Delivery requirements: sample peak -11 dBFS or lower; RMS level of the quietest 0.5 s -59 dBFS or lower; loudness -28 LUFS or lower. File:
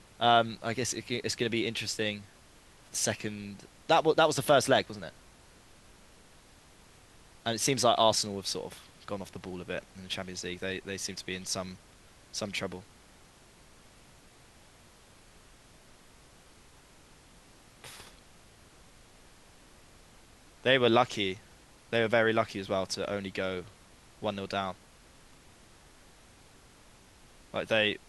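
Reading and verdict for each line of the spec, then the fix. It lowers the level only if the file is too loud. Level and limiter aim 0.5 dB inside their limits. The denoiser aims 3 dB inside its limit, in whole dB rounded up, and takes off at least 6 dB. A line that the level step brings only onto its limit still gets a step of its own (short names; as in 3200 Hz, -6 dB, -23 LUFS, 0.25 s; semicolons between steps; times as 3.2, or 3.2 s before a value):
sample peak -9.5 dBFS: fail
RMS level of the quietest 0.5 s -57 dBFS: fail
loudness -30.0 LUFS: OK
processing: denoiser 6 dB, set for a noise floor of -57 dBFS; limiter -11.5 dBFS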